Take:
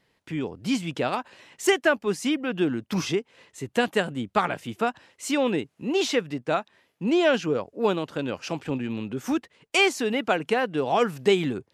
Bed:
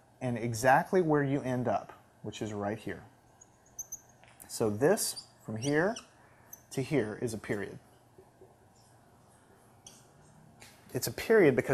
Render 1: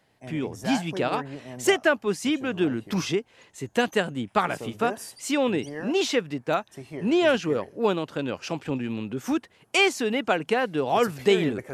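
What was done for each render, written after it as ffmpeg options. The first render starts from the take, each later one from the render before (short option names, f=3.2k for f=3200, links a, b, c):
-filter_complex "[1:a]volume=-7.5dB[a];[0:a][a]amix=inputs=2:normalize=0"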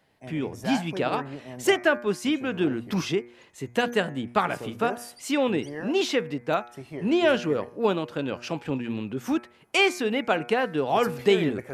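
-af "equalizer=f=7.3k:w=1.1:g=-4,bandreject=f=119.9:t=h:w=4,bandreject=f=239.8:t=h:w=4,bandreject=f=359.7:t=h:w=4,bandreject=f=479.6:t=h:w=4,bandreject=f=599.5:t=h:w=4,bandreject=f=719.4:t=h:w=4,bandreject=f=839.3:t=h:w=4,bandreject=f=959.2:t=h:w=4,bandreject=f=1.0791k:t=h:w=4,bandreject=f=1.199k:t=h:w=4,bandreject=f=1.3189k:t=h:w=4,bandreject=f=1.4388k:t=h:w=4,bandreject=f=1.5587k:t=h:w=4,bandreject=f=1.6786k:t=h:w=4,bandreject=f=1.7985k:t=h:w=4,bandreject=f=1.9184k:t=h:w=4,bandreject=f=2.0383k:t=h:w=4,bandreject=f=2.1582k:t=h:w=4,bandreject=f=2.2781k:t=h:w=4,bandreject=f=2.398k:t=h:w=4,bandreject=f=2.5179k:t=h:w=4"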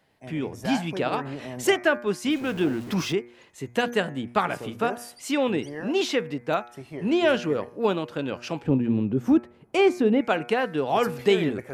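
-filter_complex "[0:a]asettb=1/sr,asplit=3[a][b][c];[a]atrim=end=0.654[d];[b]atrim=start=0.65:end=1.75,asetpts=PTS-STARTPTS,afade=t=in:d=0.004:c=qsin,afade=t=out:st=1.096:d=0.004:c=qsin,acompressor=mode=upward:threshold=-26dB:ratio=2.5:attack=3.2:release=140:knee=2.83:detection=peak[e];[c]atrim=start=1.746[f];[d][e]acrossfade=d=0.004:c1=hsin:c2=qsin[g];[g][f]acrossfade=d=0.004:c1=qsin:c2=hsin,asettb=1/sr,asplit=3[h][i][j];[h]atrim=end=2.304[k];[i]atrim=start=2.3:end=3.13,asetpts=PTS-STARTPTS,afade=t=in:d=0.004:c=qsin,afade=t=out:st=0.826:d=0.004:c=qsin,aeval=exprs='val(0)+0.5*0.0133*sgn(val(0))':c=same[l];[j]atrim=start=3.126[m];[k][l]acrossfade=d=0.004:c1=hsin:c2=qsin[n];[n][m]acrossfade=d=0.004:c1=qsin:c2=hsin,asettb=1/sr,asplit=3[o][p][q];[o]atrim=end=8.624[r];[p]atrim=start=8.62:end=10.21,asetpts=PTS-STARTPTS,afade=t=in:d=0.004:c=qsin,afade=t=out:st=1.586:d=0.004:c=qsin,tiltshelf=f=840:g=9[s];[q]atrim=start=10.206[t];[r][s]acrossfade=d=0.004:c1=hsin:c2=qsin[u];[u][t]acrossfade=d=0.004:c1=qsin:c2=hsin"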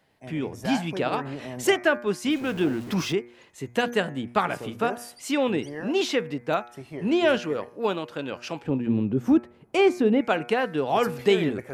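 -filter_complex "[0:a]asettb=1/sr,asplit=3[a][b][c];[a]atrim=end=7.384[d];[b]atrim=start=7.38:end=8.87,asetpts=PTS-STARTPTS,afade=t=in:d=0.004:c=qsin,afade=t=out:st=1.486:d=0.004:c=qsin,lowshelf=f=370:g=-6[e];[c]atrim=start=8.866[f];[d][e]acrossfade=d=0.004:c1=hsin:c2=qsin[g];[g][f]acrossfade=d=0.004:c1=qsin:c2=hsin"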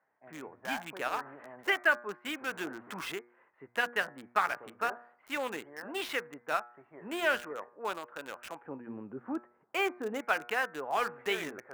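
-filter_complex "[0:a]bandpass=f=1.6k:t=q:w=1.4:csg=0,acrossover=split=1600[a][b];[b]aeval=exprs='val(0)*gte(abs(val(0)),0.01)':c=same[c];[a][c]amix=inputs=2:normalize=0"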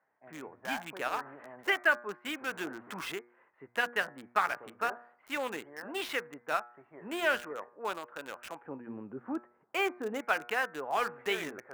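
-af anull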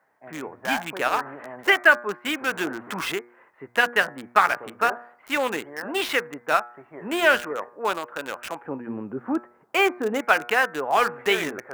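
-af "volume=10.5dB"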